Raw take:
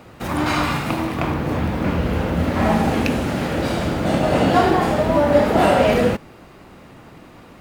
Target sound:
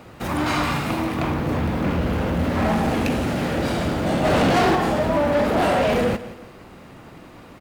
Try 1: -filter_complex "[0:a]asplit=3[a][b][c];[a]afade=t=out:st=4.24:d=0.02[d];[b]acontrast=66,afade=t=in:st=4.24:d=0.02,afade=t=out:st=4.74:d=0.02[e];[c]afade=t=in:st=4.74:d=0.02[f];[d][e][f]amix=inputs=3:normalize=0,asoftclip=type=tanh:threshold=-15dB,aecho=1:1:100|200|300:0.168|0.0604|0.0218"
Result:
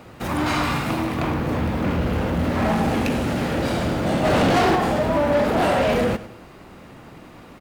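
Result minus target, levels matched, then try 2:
echo 71 ms early
-filter_complex "[0:a]asplit=3[a][b][c];[a]afade=t=out:st=4.24:d=0.02[d];[b]acontrast=66,afade=t=in:st=4.24:d=0.02,afade=t=out:st=4.74:d=0.02[e];[c]afade=t=in:st=4.74:d=0.02[f];[d][e][f]amix=inputs=3:normalize=0,asoftclip=type=tanh:threshold=-15dB,aecho=1:1:171|342|513:0.168|0.0604|0.0218"

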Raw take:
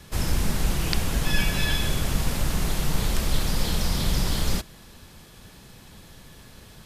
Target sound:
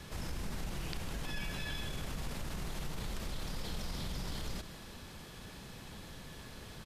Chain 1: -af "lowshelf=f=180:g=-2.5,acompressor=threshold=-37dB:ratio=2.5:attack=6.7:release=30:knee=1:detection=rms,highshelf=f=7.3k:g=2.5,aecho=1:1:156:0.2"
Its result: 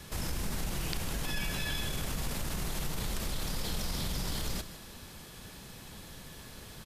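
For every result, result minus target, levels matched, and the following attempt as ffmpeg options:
compressor: peak gain reduction -4.5 dB; 8000 Hz band +2.5 dB
-af "lowshelf=f=180:g=-2.5,acompressor=threshold=-44.5dB:ratio=2.5:attack=6.7:release=30:knee=1:detection=rms,highshelf=f=7.3k:g=2.5,aecho=1:1:156:0.2"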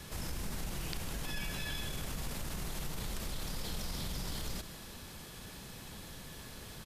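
8000 Hz band +3.5 dB
-af "lowshelf=f=180:g=-2.5,acompressor=threshold=-44.5dB:ratio=2.5:attack=6.7:release=30:knee=1:detection=rms,highshelf=f=7.3k:g=-7,aecho=1:1:156:0.2"

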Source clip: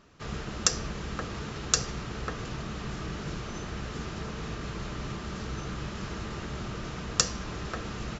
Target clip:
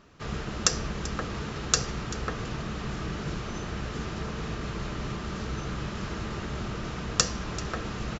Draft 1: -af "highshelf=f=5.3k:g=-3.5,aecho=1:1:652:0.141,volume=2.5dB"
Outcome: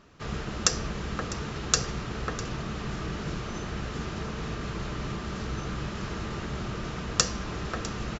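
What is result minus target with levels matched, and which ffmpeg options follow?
echo 0.264 s late
-af "highshelf=f=5.3k:g=-3.5,aecho=1:1:388:0.141,volume=2.5dB"

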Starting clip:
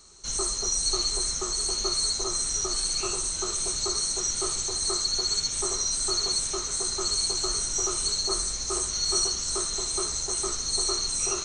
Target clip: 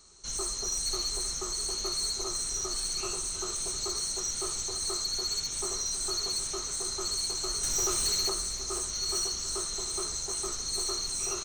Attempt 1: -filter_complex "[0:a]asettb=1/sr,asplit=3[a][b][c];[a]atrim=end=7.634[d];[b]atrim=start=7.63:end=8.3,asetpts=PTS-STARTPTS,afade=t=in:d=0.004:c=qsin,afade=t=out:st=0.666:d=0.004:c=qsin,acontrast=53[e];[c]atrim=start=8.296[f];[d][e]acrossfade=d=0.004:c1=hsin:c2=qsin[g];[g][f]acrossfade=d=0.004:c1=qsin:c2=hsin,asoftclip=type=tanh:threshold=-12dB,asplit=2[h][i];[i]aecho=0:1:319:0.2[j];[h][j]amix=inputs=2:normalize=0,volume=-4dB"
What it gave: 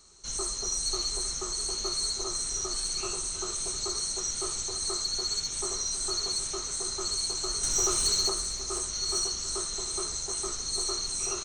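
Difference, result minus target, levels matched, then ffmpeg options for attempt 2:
soft clip: distortion -10 dB
-filter_complex "[0:a]asettb=1/sr,asplit=3[a][b][c];[a]atrim=end=7.634[d];[b]atrim=start=7.63:end=8.3,asetpts=PTS-STARTPTS,afade=t=in:d=0.004:c=qsin,afade=t=out:st=0.666:d=0.004:c=qsin,acontrast=53[e];[c]atrim=start=8.296[f];[d][e]acrossfade=d=0.004:c1=hsin:c2=qsin[g];[g][f]acrossfade=d=0.004:c1=qsin:c2=hsin,asoftclip=type=tanh:threshold=-19.5dB,asplit=2[h][i];[i]aecho=0:1:319:0.2[j];[h][j]amix=inputs=2:normalize=0,volume=-4dB"

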